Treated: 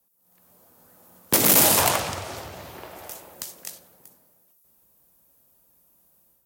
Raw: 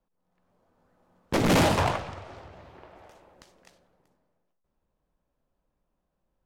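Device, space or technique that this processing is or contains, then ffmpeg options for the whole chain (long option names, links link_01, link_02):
FM broadcast chain: -filter_complex "[0:a]highpass=77,dynaudnorm=framelen=180:gausssize=3:maxgain=8dB,acrossover=split=230|1300[link_01][link_02][link_03];[link_01]acompressor=threshold=-32dB:ratio=4[link_04];[link_02]acompressor=threshold=-20dB:ratio=4[link_05];[link_03]acompressor=threshold=-26dB:ratio=4[link_06];[link_04][link_05][link_06]amix=inputs=3:normalize=0,aemphasis=mode=production:type=50fm,alimiter=limit=-10.5dB:level=0:latency=1:release=226,asoftclip=type=hard:threshold=-14dB,lowpass=frequency=15000:width=0.5412,lowpass=frequency=15000:width=1.3066,aemphasis=mode=production:type=50fm,volume=1dB"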